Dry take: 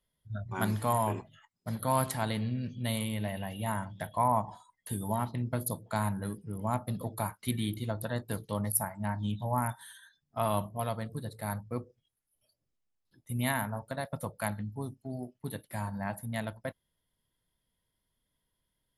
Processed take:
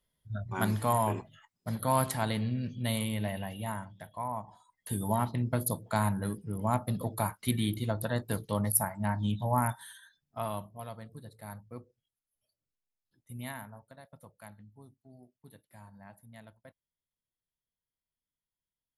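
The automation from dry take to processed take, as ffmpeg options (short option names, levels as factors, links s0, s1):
-af "volume=4.22,afade=t=out:st=3.3:d=0.72:silence=0.316228,afade=t=in:st=4.53:d=0.47:silence=0.266073,afade=t=out:st=9.68:d=0.97:silence=0.266073,afade=t=out:st=13.35:d=0.62:silence=0.421697"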